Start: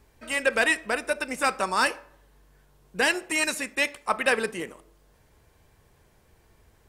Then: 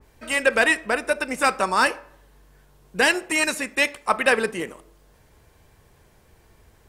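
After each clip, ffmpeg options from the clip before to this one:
-af "adynamicequalizer=threshold=0.0178:dfrequency=2400:dqfactor=0.7:tfrequency=2400:tqfactor=0.7:attack=5:release=100:ratio=0.375:range=2.5:mode=cutabove:tftype=highshelf,volume=4.5dB"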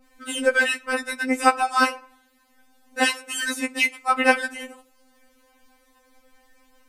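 -af "afftfilt=real='re*3.46*eq(mod(b,12),0)':imag='im*3.46*eq(mod(b,12),0)':win_size=2048:overlap=0.75,volume=1.5dB"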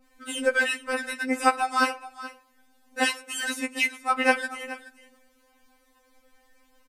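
-af "aecho=1:1:425:0.158,volume=-3.5dB"

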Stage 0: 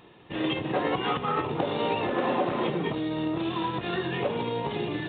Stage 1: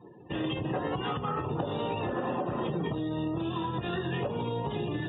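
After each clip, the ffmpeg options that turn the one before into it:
-filter_complex "[0:a]equalizer=f=2.2k:w=8:g=-8,acrossover=split=140[a][b];[b]acompressor=threshold=-40dB:ratio=2.5[c];[a][c]amix=inputs=2:normalize=0,afftdn=nr=31:nf=-50,volume=5dB"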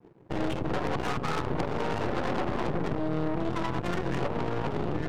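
-af "adynamicsmooth=sensitivity=5:basefreq=520,aeval=exprs='sgn(val(0))*max(abs(val(0))-0.00112,0)':c=same,aeval=exprs='0.126*(cos(1*acos(clip(val(0)/0.126,-1,1)))-cos(1*PI/2))+0.0282*(cos(8*acos(clip(val(0)/0.126,-1,1)))-cos(8*PI/2))':c=same"

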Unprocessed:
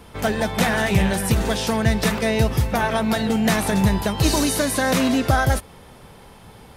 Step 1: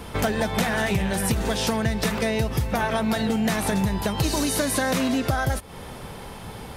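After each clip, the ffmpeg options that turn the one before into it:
-af "acompressor=threshold=-28dB:ratio=6,volume=7dB"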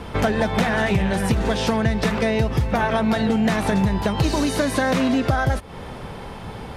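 -af "aemphasis=mode=reproduction:type=50fm,volume=3.5dB"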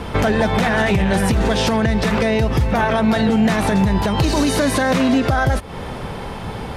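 -af "alimiter=level_in=13dB:limit=-1dB:release=50:level=0:latency=1,volume=-7dB"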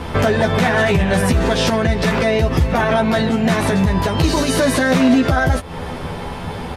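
-filter_complex "[0:a]asplit=2[a][b];[b]adelay=12,volume=-3.5dB[c];[a][c]amix=inputs=2:normalize=0"

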